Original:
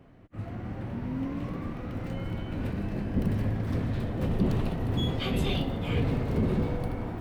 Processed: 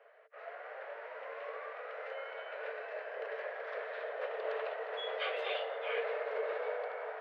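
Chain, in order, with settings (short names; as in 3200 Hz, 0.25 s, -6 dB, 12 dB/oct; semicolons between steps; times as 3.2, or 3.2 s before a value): dynamic EQ 6700 Hz, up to -4 dB, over -55 dBFS, Q 0.89; rippled Chebyshev high-pass 430 Hz, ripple 9 dB; air absorption 260 m; gain +7 dB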